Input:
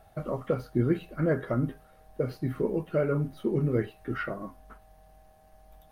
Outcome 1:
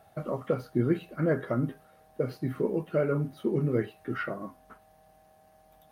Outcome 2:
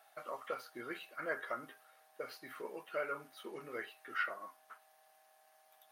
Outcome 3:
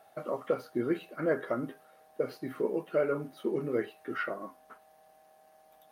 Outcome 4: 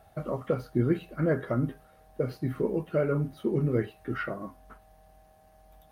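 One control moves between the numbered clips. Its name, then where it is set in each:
high-pass filter, corner frequency: 110, 1,100, 340, 42 Hertz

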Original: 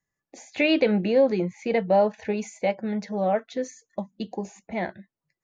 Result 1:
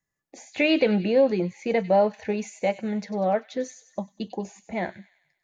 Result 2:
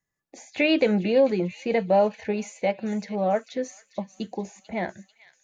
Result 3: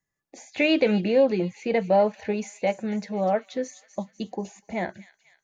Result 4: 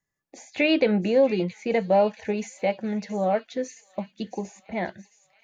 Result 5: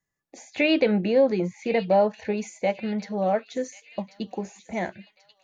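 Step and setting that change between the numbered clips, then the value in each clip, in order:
delay with a high-pass on its return, delay time: 97, 442, 248, 673, 1,087 milliseconds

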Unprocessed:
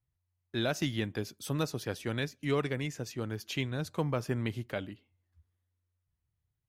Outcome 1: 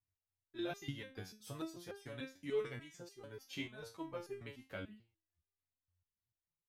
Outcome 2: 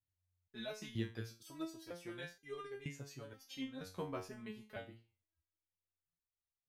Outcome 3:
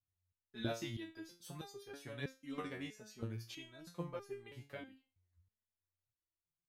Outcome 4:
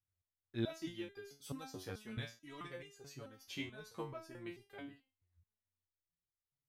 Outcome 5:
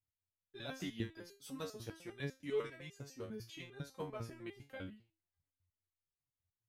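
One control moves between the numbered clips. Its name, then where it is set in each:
step-sequenced resonator, speed: 6.8, 2.1, 3.1, 4.6, 10 Hertz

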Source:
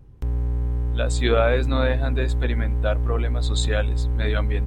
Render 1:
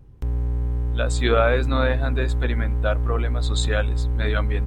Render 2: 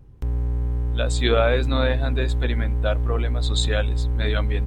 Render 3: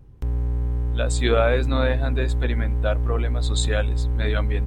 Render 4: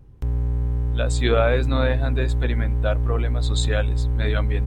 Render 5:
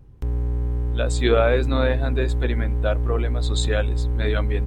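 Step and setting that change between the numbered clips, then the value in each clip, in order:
dynamic equaliser, frequency: 1,300, 3,500, 8,800, 110, 380 Hertz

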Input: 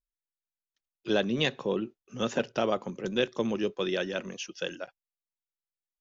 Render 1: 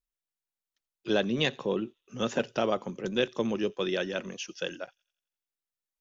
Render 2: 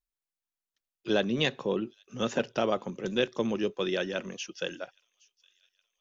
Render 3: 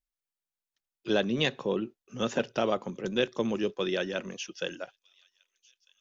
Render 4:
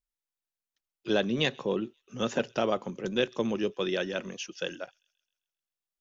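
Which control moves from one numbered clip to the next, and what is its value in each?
delay with a high-pass on its return, delay time: 87, 816, 1,249, 132 milliseconds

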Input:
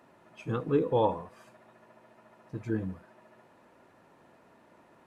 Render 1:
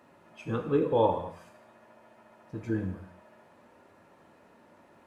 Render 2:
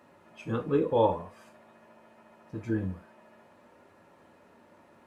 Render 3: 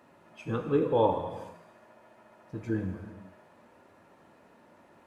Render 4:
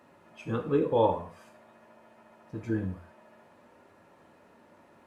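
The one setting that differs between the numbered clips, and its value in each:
reverb whose tail is shaped and stops, gate: 280, 90, 480, 160 milliseconds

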